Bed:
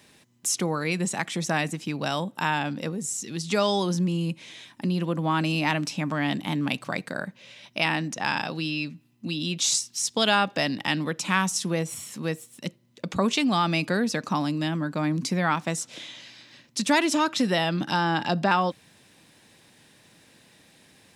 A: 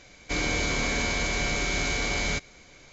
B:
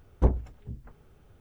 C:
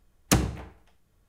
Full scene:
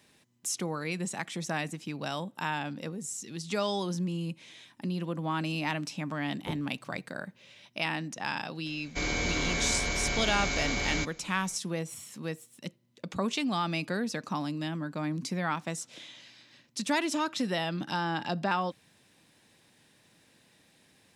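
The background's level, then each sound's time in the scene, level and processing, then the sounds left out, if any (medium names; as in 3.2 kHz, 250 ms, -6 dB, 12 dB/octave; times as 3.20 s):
bed -7 dB
6.24 s: add B -12 dB + high-pass 110 Hz 24 dB/octave
8.66 s: add A -3.5 dB
not used: C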